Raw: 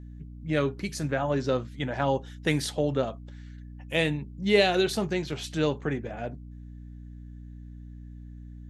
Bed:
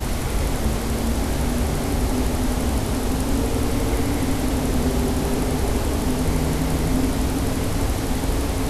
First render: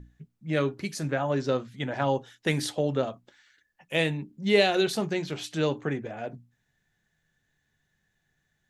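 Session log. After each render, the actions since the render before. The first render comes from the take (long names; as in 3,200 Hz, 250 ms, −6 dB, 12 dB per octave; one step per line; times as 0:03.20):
mains-hum notches 60/120/180/240/300 Hz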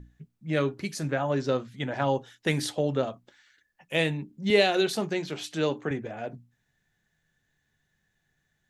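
0:04.50–0:05.91: high-pass filter 160 Hz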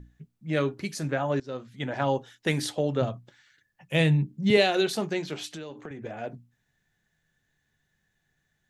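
0:01.40–0:01.87: fade in, from −19.5 dB
0:03.01–0:04.57: parametric band 130 Hz +14.5 dB
0:05.52–0:06.04: downward compressor 12 to 1, threshold −35 dBFS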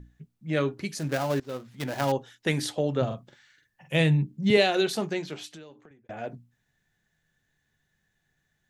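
0:00.99–0:02.12: gap after every zero crossing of 0.14 ms
0:03.06–0:03.96: double-tracking delay 45 ms −4.5 dB
0:05.06–0:06.09: fade out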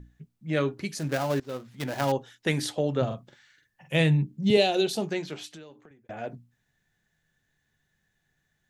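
0:04.43–0:05.07: flat-topped bell 1,500 Hz −8.5 dB 1.3 octaves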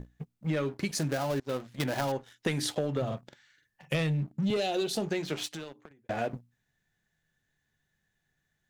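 leveller curve on the samples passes 2
downward compressor 10 to 1, threshold −27 dBFS, peak gain reduction 14.5 dB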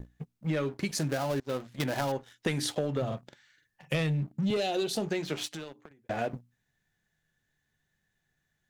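pitch vibrato 0.66 Hz 7.6 cents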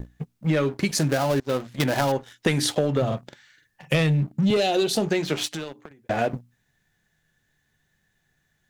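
level +8 dB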